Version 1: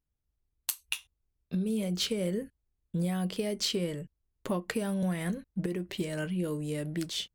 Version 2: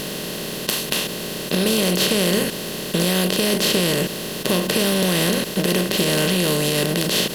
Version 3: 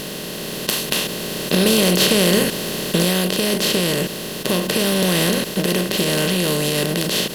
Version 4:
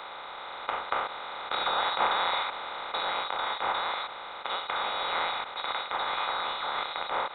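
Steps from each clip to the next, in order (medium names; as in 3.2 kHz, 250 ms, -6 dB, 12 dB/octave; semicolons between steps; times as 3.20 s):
spectral levelling over time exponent 0.2; in parallel at +2 dB: peak limiter -14 dBFS, peak gain reduction 11 dB; on the sum: trim -1.5 dB
level rider; trim -1 dB
frequency inversion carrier 4 kHz; three-band isolator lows -22 dB, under 490 Hz, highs -24 dB, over 2 kHz; trim -2 dB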